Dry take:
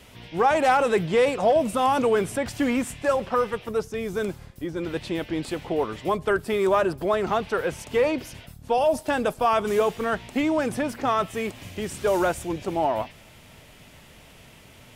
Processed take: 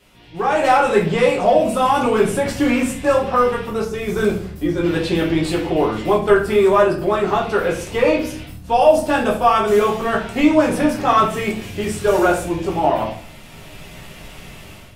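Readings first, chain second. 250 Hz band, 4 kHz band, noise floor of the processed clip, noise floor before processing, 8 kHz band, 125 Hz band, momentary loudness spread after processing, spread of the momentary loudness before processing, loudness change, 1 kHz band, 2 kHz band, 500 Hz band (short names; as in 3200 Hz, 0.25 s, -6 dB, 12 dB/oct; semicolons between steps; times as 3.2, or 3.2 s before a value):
+8.5 dB, +7.0 dB, -39 dBFS, -50 dBFS, +6.0 dB, +9.0 dB, 9 LU, 10 LU, +7.0 dB, +7.0 dB, +6.5 dB, +7.0 dB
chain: AGC gain up to 14 dB; shoebox room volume 55 m³, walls mixed, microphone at 0.99 m; gain -8 dB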